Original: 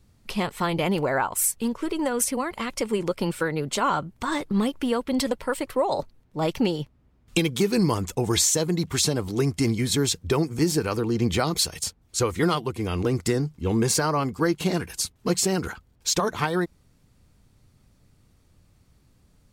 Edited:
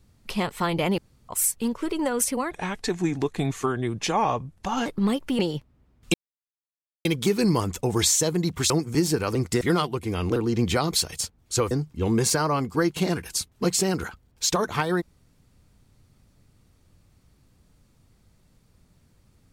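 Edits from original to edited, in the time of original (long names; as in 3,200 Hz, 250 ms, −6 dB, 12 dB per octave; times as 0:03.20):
0:00.98–0:01.29: fill with room tone
0:02.51–0:04.39: play speed 80%
0:04.92–0:06.64: remove
0:07.39: splice in silence 0.91 s
0:09.04–0:10.34: remove
0:10.99–0:12.34: swap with 0:13.09–0:13.35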